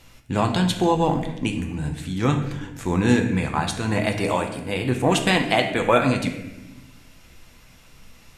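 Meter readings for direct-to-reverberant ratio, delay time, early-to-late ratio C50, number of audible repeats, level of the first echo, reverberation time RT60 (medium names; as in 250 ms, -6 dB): 3.5 dB, no echo, 8.0 dB, no echo, no echo, 1.0 s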